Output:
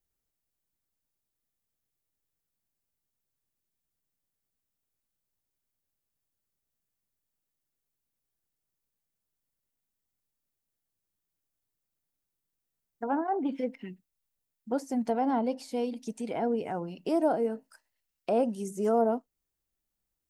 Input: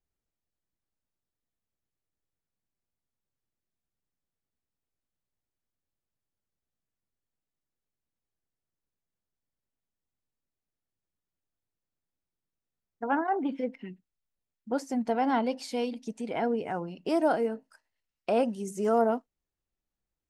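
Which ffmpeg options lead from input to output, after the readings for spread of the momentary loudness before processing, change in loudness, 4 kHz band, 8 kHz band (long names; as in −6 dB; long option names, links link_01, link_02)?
11 LU, −0.5 dB, −5.5 dB, −1.5 dB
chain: -filter_complex "[0:a]highshelf=frequency=7700:gain=11.5,acrossover=split=1000[link_01][link_02];[link_02]acompressor=threshold=-46dB:ratio=6[link_03];[link_01][link_03]amix=inputs=2:normalize=0"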